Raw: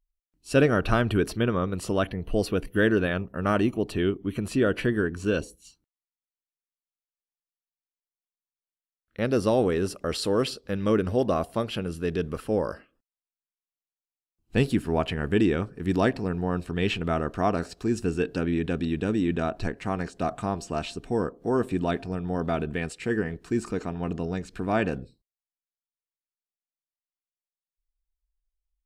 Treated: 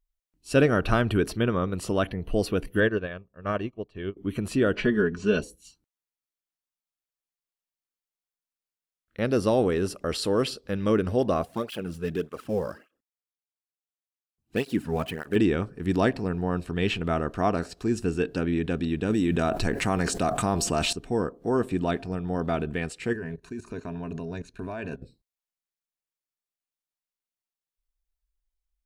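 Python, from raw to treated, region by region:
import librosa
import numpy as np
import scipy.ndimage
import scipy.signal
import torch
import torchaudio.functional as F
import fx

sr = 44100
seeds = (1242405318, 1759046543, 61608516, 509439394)

y = fx.chain(x, sr, fx.lowpass(hz=4600.0, slope=12),
    fx.comb(ms=1.8, depth=0.34),
    fx.upward_expand(threshold_db=-34.0, expansion=2.5), at=(2.8, 4.17))
y = fx.chain(y, sr, fx.lowpass(hz=6500.0, slope=24),
    fx.comb(ms=4.8, depth=0.68), at=(4.75, 5.42))
y = fx.chain(y, sr, fx.dead_time(dead_ms=0.052),
    fx.flanger_cancel(hz=1.7, depth_ms=3.6), at=(11.42, 15.36))
y = fx.chain(y, sr, fx.high_shelf(hz=7600.0, db=12.0),
    fx.env_flatten(amount_pct=70), at=(19.1, 20.93))
y = fx.chain(y, sr, fx.ripple_eq(per_octave=1.5, db=9),
    fx.level_steps(step_db=17), at=(23.13, 25.02))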